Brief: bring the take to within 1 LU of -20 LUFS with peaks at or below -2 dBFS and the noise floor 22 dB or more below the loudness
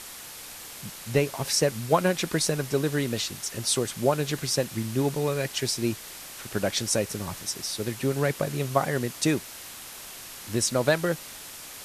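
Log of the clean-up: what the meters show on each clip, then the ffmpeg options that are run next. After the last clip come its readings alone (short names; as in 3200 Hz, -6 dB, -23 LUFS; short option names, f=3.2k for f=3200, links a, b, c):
noise floor -42 dBFS; noise floor target -49 dBFS; loudness -27.0 LUFS; peak -6.5 dBFS; loudness target -20.0 LUFS
-> -af "afftdn=nr=7:nf=-42"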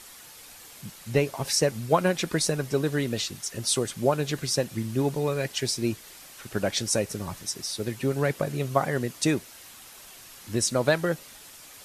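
noise floor -48 dBFS; noise floor target -49 dBFS
-> -af "afftdn=nr=6:nf=-48"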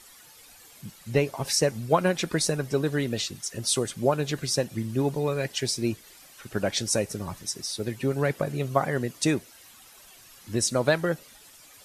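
noise floor -52 dBFS; loudness -27.0 LUFS; peak -7.0 dBFS; loudness target -20.0 LUFS
-> -af "volume=7dB,alimiter=limit=-2dB:level=0:latency=1"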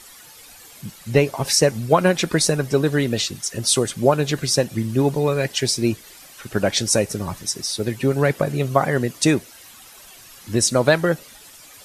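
loudness -20.0 LUFS; peak -2.0 dBFS; noise floor -45 dBFS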